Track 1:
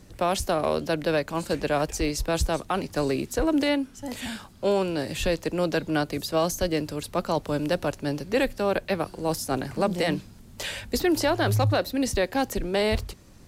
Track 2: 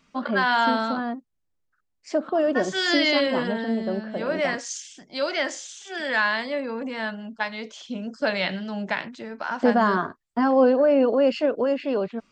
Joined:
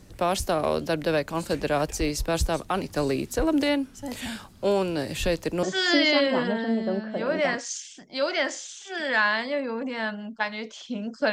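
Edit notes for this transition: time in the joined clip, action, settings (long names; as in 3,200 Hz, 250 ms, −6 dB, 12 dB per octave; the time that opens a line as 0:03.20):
track 1
0:05.63: continue with track 2 from 0:02.63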